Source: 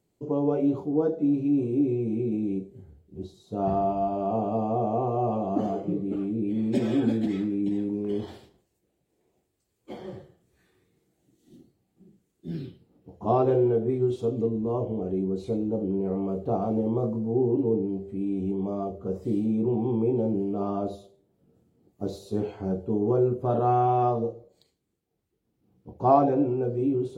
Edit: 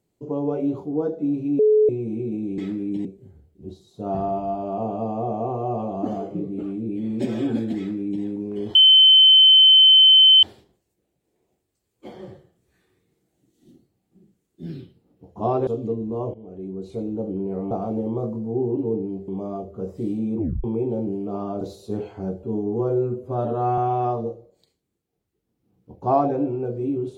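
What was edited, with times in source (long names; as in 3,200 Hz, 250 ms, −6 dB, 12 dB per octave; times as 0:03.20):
0:01.59–0:01.89: beep over 428 Hz −12.5 dBFS
0:07.30–0:07.77: duplicate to 0:02.58
0:08.28: insert tone 3,070 Hz −8.5 dBFS 1.68 s
0:13.52–0:14.21: remove
0:14.88–0:15.66: fade in, from −15.5 dB
0:16.25–0:16.51: remove
0:18.08–0:18.55: remove
0:19.65: tape stop 0.26 s
0:20.88–0:22.04: remove
0:22.86–0:23.76: time-stretch 1.5×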